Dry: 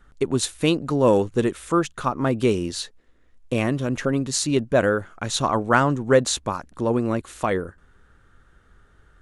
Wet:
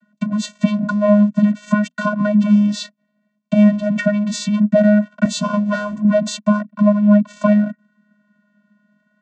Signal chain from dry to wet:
0:03.92–0:04.49: dynamic equaliser 2,200 Hz, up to +8 dB, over −46 dBFS, Q 1.3
0:06.59–0:07.26: low-pass filter 2,800 Hz
leveller curve on the samples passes 3
downward compressor 5 to 1, threshold −20 dBFS, peak gain reduction 12 dB
channel vocoder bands 16, square 208 Hz
pitch vibrato 0.67 Hz 8.8 cents
0:05.24–0:06.05: double-tracking delay 12 ms −5 dB
level +8.5 dB

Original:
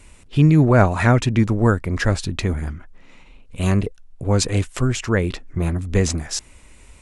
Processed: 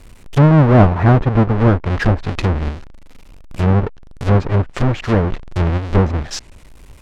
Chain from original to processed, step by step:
each half-wave held at its own peak
treble cut that deepens with the level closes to 1,300 Hz, closed at −11 dBFS

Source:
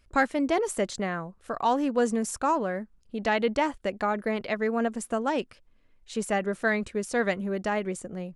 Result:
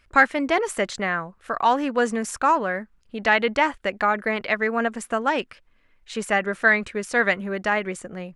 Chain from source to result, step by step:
parametric band 1,800 Hz +10.5 dB 2.2 octaves

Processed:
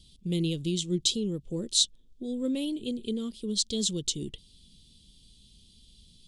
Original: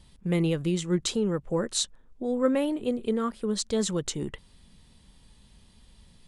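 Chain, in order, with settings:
drawn EQ curve 350 Hz 0 dB, 800 Hz −17 dB, 1,700 Hz −22 dB, 3,300 Hz +10 dB, 11,000 Hz +3 dB
level −3 dB

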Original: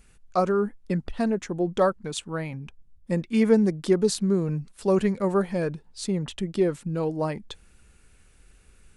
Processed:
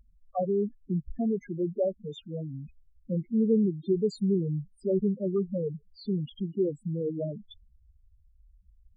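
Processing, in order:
asymmetric clip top −21.5 dBFS
spectral peaks only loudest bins 4
level −2 dB

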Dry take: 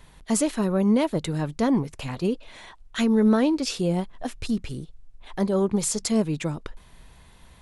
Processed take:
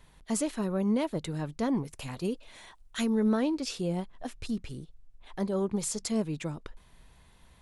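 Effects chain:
0:01.85–0:03.10: high-shelf EQ 7,600 Hz +11.5 dB
level −7 dB

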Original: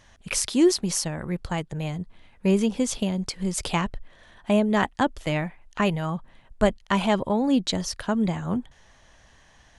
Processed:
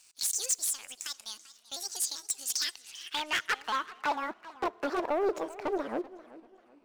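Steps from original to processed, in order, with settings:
pitch shifter gated in a rhythm +3.5 semitones, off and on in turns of 280 ms
low-shelf EQ 490 Hz −11.5 dB
in parallel at +0.5 dB: downward compressor 12 to 1, threshold −36 dBFS, peak gain reduction 16 dB
on the sum: wrap-around overflow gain 16 dB
change of speed 1.43×
band-pass filter sweep 7,000 Hz → 550 Hz, 0:02.35–0:04.52
soft clipping −20 dBFS, distortion −26 dB
leveller curve on the samples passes 2
on a send at −22.5 dB: convolution reverb RT60 2.7 s, pre-delay 4 ms
on the sum: feedback echo with a swinging delay time 389 ms, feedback 33%, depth 194 cents, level −18 dB

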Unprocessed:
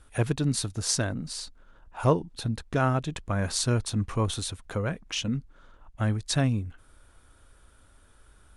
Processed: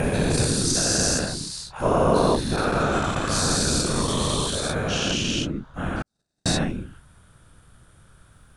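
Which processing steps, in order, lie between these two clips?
every bin's largest magnitude spread in time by 480 ms
random phases in short frames
0:06.02–0:06.46: noise gate −11 dBFS, range −59 dB
level −2.5 dB

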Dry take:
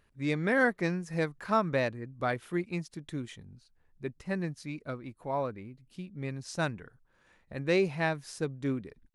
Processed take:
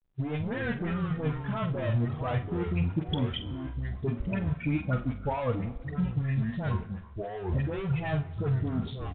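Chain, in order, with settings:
spectral dynamics exaggerated over time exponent 2
Bessel low-pass filter 2,500 Hz, order 4
brickwall limiter −26 dBFS, peak gain reduction 9 dB
leveller curve on the samples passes 3
compressor whose output falls as the input rises −38 dBFS, ratio −1
all-pass dispersion highs, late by 55 ms, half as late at 1,200 Hz
delay with pitch and tempo change per echo 148 ms, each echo −5 semitones, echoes 3, each echo −6 dB
double-tracking delay 46 ms −10 dB
convolution reverb RT60 1.3 s, pre-delay 3 ms, DRR 13 dB
level +8 dB
mu-law 64 kbit/s 8,000 Hz

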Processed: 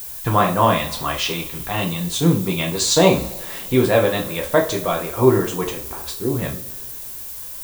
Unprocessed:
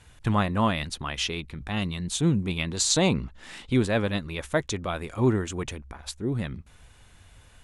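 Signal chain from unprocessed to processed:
graphic EQ with 10 bands 500 Hz +8 dB, 1,000 Hz +7 dB, 4,000 Hz +3 dB
coupled-rooms reverb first 0.33 s, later 2.1 s, from −21 dB, DRR −1 dB
background noise violet −33 dBFS

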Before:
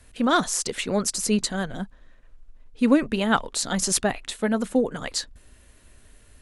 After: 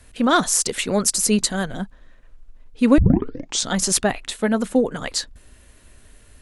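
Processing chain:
0:00.46–0:01.74: high-shelf EQ 10,000 Hz +10.5 dB
0:02.98: tape start 0.72 s
level +3.5 dB

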